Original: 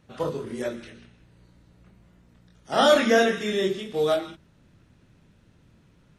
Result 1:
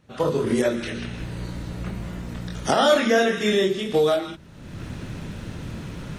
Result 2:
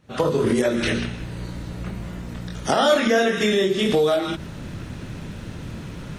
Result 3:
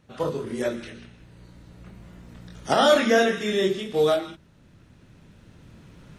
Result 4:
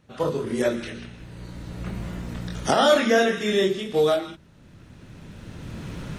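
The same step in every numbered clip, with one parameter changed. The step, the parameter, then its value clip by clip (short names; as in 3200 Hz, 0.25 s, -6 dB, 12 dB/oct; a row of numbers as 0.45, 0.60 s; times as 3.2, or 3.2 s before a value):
recorder AGC, rising by: 32, 79, 5.2, 13 dB/s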